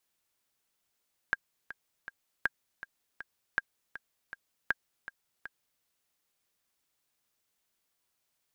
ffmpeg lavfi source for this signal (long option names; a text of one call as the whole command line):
ffmpeg -f lavfi -i "aevalsrc='pow(10,(-13.5-14.5*gte(mod(t,3*60/160),60/160))/20)*sin(2*PI*1610*mod(t,60/160))*exp(-6.91*mod(t,60/160)/0.03)':duration=4.5:sample_rate=44100" out.wav